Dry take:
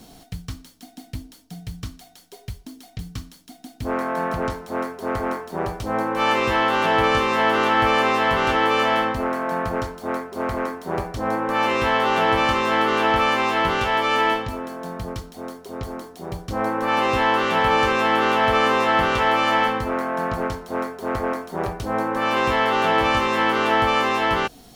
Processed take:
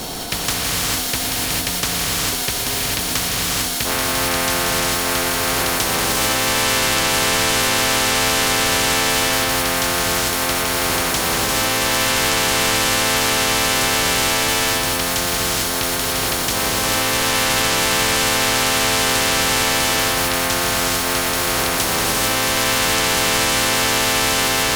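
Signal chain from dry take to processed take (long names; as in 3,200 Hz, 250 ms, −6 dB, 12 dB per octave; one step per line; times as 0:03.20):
sine wavefolder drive 6 dB, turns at −4.5 dBFS
reverb whose tail is shaped and stops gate 470 ms rising, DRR −6.5 dB
every bin compressed towards the loudest bin 4 to 1
level −10.5 dB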